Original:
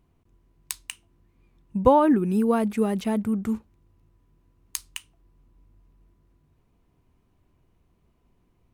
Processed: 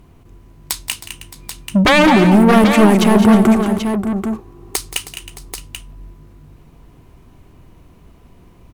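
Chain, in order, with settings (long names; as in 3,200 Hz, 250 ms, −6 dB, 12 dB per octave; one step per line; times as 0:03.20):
sine wavefolder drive 15 dB, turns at −4 dBFS
0:03.15–0:04.76: hollow resonant body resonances 390/770/1,100 Hz, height 15 dB
soft clipping −7.5 dBFS, distortion −14 dB
on a send: multi-tap delay 175/208/316/618/785 ms −14/−8.5/−15/−17/−8.5 dB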